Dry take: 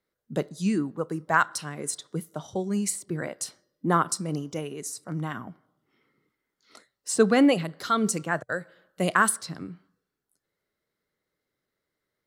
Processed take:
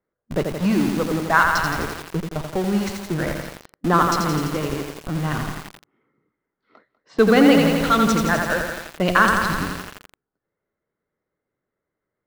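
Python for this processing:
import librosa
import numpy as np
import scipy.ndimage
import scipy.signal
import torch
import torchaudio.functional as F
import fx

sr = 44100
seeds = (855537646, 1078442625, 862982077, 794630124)

p1 = scipy.signal.sosfilt(scipy.signal.butter(4, 5700.0, 'lowpass', fs=sr, output='sos'), x)
p2 = fx.env_lowpass(p1, sr, base_hz=1300.0, full_db=-19.5)
p3 = fx.peak_eq(p2, sr, hz=2600.0, db=2.5, octaves=2.5)
p4 = fx.schmitt(p3, sr, flips_db=-34.0)
p5 = p3 + (p4 * librosa.db_to_amplitude(-4.0))
p6 = p5 + 10.0 ** (-18.0 / 20.0) * np.pad(p5, (int(196 * sr / 1000.0), 0))[:len(p5)]
p7 = fx.echo_crushed(p6, sr, ms=85, feedback_pct=80, bits=6, wet_db=-4)
y = p7 * librosa.db_to_amplitude(2.5)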